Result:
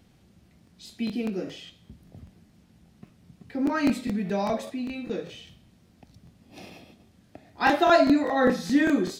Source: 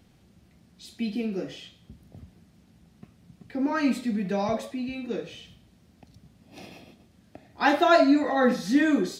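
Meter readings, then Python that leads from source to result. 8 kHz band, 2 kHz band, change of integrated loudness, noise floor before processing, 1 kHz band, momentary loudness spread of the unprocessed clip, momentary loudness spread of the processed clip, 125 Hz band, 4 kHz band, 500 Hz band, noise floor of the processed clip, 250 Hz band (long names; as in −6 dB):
0.0 dB, +0.5 dB, 0.0 dB, −60 dBFS, +0.5 dB, 16 LU, 16 LU, +1.0 dB, 0.0 dB, +0.5 dB, −60 dBFS, 0.0 dB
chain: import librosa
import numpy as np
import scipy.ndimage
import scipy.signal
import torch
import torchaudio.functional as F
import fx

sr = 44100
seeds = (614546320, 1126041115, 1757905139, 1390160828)

y = fx.buffer_crackle(x, sr, first_s=0.65, period_s=0.2, block=1024, kind='repeat')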